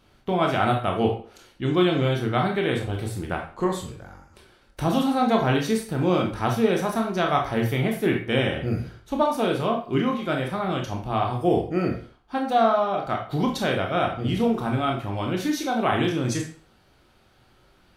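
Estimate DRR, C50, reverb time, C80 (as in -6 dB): 1.0 dB, 7.0 dB, 0.45 s, 11.5 dB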